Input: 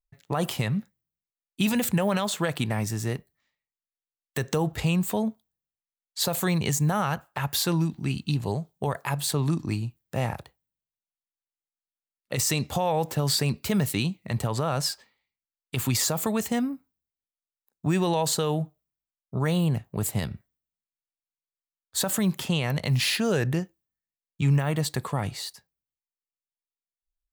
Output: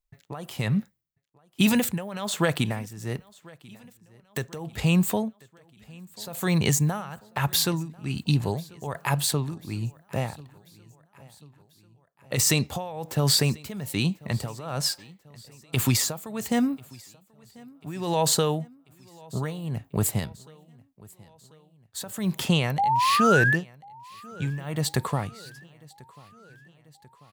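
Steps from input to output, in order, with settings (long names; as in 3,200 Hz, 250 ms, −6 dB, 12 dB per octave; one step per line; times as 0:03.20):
amplitude tremolo 1.2 Hz, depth 85%
sound drawn into the spectrogram rise, 0:22.78–0:23.56, 770–1,800 Hz −26 dBFS
repeating echo 1,041 ms, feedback 57%, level −24 dB
level +4 dB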